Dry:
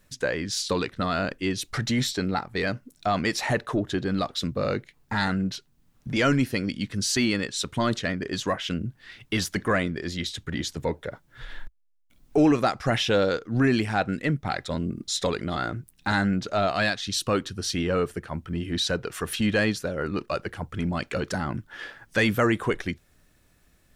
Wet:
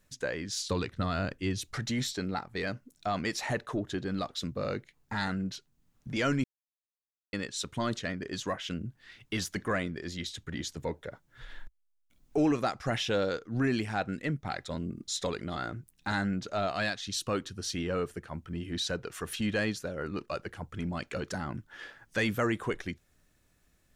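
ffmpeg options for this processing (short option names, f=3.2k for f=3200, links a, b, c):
-filter_complex "[0:a]asettb=1/sr,asplit=3[a][b][c];[a]atrim=end=0.694[d];[b]atrim=start=0.69:end=1.73,asetpts=PTS-STARTPTS,afade=t=in:d=0.004:c=qsin,afade=t=out:st=1.036:d=0.004:c=qsin,equalizer=f=89:w=0.93:g=9.5[e];[c]atrim=start=1.726[f];[d][e]acrossfade=d=0.004:c1=hsin:c2=qsin[g];[g][f]acrossfade=d=0.004:c1=qsin:c2=hsin,asplit=3[h][i][j];[h]atrim=end=6.44,asetpts=PTS-STARTPTS,afade=t=out:st=6.436:d=0.004:c=hsin[k];[i]atrim=start=6.44:end=7.33,asetpts=PTS-STARTPTS,volume=0[l];[j]atrim=start=7.33,asetpts=PTS-STARTPTS,afade=t=in:d=0.004:c=hsin[m];[k][l][m]concat=n=3:v=0:a=1,equalizer=f=6.7k:t=o:w=0.38:g=3,volume=-7dB"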